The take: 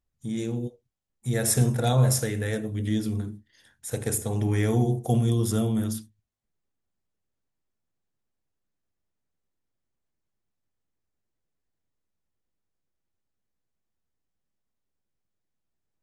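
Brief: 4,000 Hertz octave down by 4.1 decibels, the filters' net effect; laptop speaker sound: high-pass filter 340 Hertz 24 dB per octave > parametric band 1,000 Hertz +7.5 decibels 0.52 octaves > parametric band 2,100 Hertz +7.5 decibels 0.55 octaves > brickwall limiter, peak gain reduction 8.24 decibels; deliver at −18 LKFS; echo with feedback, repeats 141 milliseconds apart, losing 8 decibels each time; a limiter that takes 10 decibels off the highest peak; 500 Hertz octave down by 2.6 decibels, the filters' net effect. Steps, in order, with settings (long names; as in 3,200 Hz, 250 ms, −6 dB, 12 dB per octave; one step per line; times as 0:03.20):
parametric band 500 Hz −3 dB
parametric band 4,000 Hz −6.5 dB
brickwall limiter −21 dBFS
high-pass filter 340 Hz 24 dB per octave
parametric band 1,000 Hz +7.5 dB 0.52 octaves
parametric band 2,100 Hz +7.5 dB 0.55 octaves
repeating echo 141 ms, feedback 40%, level −8 dB
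level +20.5 dB
brickwall limiter −7.5 dBFS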